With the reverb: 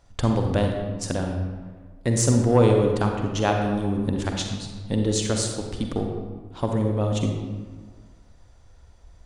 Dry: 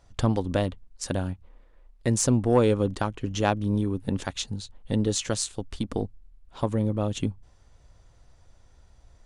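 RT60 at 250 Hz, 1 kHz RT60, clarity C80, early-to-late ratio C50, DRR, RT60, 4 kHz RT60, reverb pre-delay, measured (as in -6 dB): 1.6 s, 1.5 s, 4.5 dB, 3.0 dB, 2.0 dB, 1.6 s, 0.90 s, 40 ms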